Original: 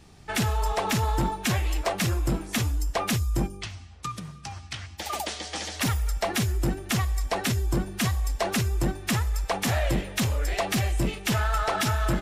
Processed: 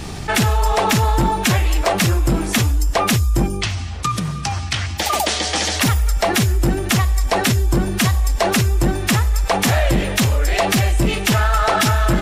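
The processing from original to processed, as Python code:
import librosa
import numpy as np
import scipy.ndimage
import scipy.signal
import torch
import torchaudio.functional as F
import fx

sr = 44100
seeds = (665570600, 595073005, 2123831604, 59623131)

y = fx.env_flatten(x, sr, amount_pct=50)
y = F.gain(torch.from_numpy(y), 8.0).numpy()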